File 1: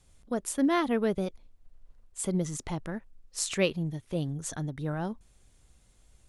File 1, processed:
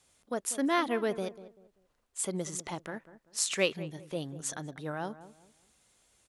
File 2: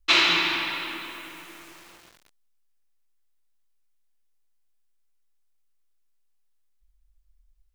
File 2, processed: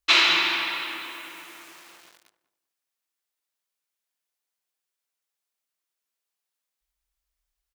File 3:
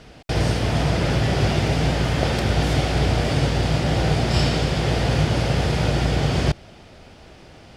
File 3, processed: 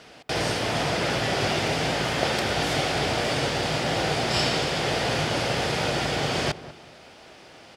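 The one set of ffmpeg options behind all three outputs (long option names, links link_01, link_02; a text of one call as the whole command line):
ffmpeg -i in.wav -filter_complex "[0:a]highpass=frequency=530:poles=1,asplit=2[link_01][link_02];[link_02]adelay=194,lowpass=frequency=1200:poles=1,volume=-14dB,asplit=2[link_03][link_04];[link_04]adelay=194,lowpass=frequency=1200:poles=1,volume=0.31,asplit=2[link_05][link_06];[link_06]adelay=194,lowpass=frequency=1200:poles=1,volume=0.31[link_07];[link_03][link_05][link_07]amix=inputs=3:normalize=0[link_08];[link_01][link_08]amix=inputs=2:normalize=0,volume=1.5dB" out.wav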